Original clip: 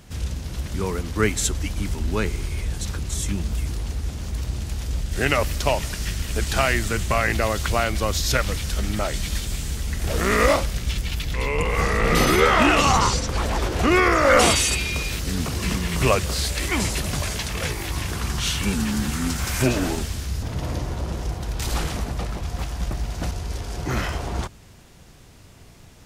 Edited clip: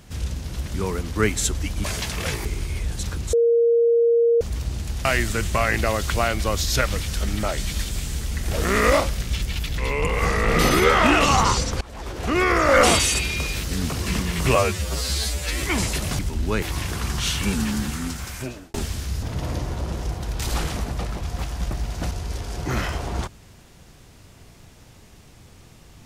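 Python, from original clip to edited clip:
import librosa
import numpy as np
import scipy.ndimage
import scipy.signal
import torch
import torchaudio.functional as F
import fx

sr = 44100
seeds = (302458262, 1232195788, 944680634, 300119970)

y = fx.edit(x, sr, fx.swap(start_s=1.84, length_s=0.43, other_s=17.21, other_length_s=0.61),
    fx.bleep(start_s=3.15, length_s=1.08, hz=467.0, db=-14.0),
    fx.cut(start_s=4.87, length_s=1.74),
    fx.fade_in_from(start_s=13.37, length_s=0.84, floor_db=-23.5),
    fx.stretch_span(start_s=16.11, length_s=0.54, factor=2.0),
    fx.fade_out_span(start_s=18.85, length_s=1.09), tone=tone)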